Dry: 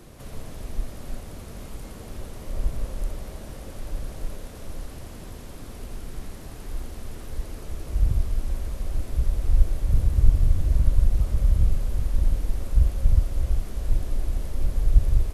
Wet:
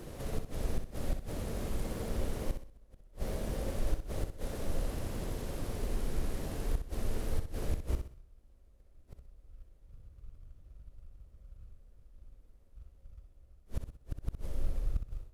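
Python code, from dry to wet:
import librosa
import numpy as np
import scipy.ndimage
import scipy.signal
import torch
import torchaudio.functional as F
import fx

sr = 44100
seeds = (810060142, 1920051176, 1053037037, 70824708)

p1 = fx.fade_out_tail(x, sr, length_s=2.26)
p2 = fx.peak_eq(p1, sr, hz=500.0, db=5.0, octaves=0.9)
p3 = fx.gate_flip(p2, sr, shuts_db=-21.0, range_db=-35)
p4 = fx.sample_hold(p3, sr, seeds[0], rate_hz=1300.0, jitter_pct=20)
p5 = p3 + F.gain(torch.from_numpy(p4), -8.0).numpy()
p6 = fx.echo_feedback(p5, sr, ms=63, feedback_pct=35, wet_db=-8.0)
y = F.gain(torch.from_numpy(p6), -2.0).numpy()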